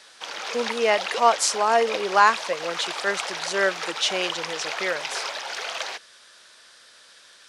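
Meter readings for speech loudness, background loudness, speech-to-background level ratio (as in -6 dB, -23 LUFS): -23.5 LUFS, -30.5 LUFS, 7.0 dB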